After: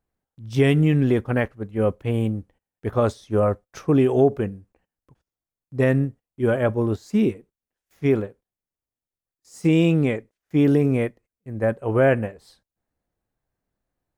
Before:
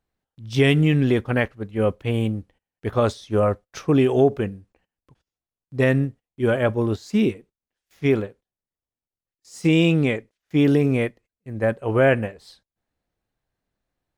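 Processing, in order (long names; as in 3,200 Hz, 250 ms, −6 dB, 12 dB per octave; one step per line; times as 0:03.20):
parametric band 3,600 Hz −7 dB 1.8 octaves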